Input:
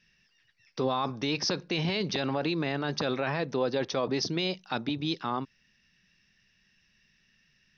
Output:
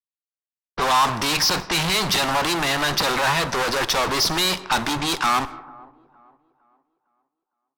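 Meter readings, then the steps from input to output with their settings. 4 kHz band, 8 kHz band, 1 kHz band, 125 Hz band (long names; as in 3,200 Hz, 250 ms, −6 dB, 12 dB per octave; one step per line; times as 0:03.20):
+12.5 dB, can't be measured, +14.0 dB, +4.0 dB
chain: fuzz pedal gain 42 dB, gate −49 dBFS
octave-band graphic EQ 125/250/500/1,000 Hz −7/−8/−7/+5 dB
dense smooth reverb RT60 1.9 s, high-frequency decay 0.55×, DRR 15 dB
low-pass that shuts in the quiet parts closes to 330 Hz, open at −16 dBFS
on a send: delay with a band-pass on its return 458 ms, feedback 36%, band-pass 520 Hz, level −20.5 dB
on the sum: level −3.5 dB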